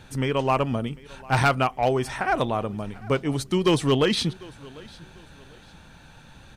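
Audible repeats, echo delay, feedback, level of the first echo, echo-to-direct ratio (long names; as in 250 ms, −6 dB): 2, 748 ms, 33%, −22.5 dB, −22.0 dB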